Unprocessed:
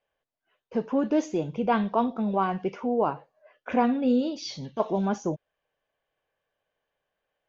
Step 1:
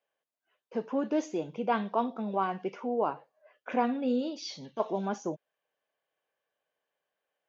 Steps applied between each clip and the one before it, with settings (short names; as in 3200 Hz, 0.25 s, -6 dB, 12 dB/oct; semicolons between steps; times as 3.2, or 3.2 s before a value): Bessel high-pass 250 Hz, order 2; gain -3.5 dB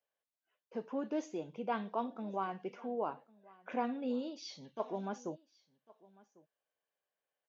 echo 1.099 s -23.5 dB; gain -7.5 dB